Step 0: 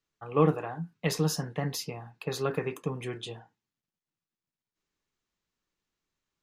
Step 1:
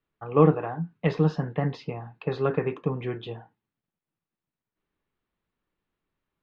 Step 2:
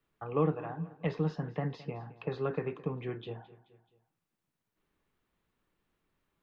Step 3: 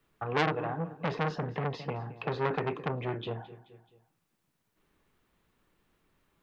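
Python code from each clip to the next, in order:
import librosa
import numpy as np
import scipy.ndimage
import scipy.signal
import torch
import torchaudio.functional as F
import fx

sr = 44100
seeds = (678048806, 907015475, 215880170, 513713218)

y1 = scipy.signal.sosfilt(scipy.signal.butter(4, 3800.0, 'lowpass', fs=sr, output='sos'), x)
y1 = fx.high_shelf(y1, sr, hz=2500.0, db=-11.0)
y1 = y1 * 10.0 ** (5.5 / 20.0)
y2 = fx.echo_feedback(y1, sr, ms=215, feedback_pct=37, wet_db=-20.5)
y2 = fx.band_squash(y2, sr, depth_pct=40)
y2 = y2 * 10.0 ** (-8.0 / 20.0)
y3 = fx.transformer_sat(y2, sr, knee_hz=2000.0)
y3 = y3 * 10.0 ** (7.5 / 20.0)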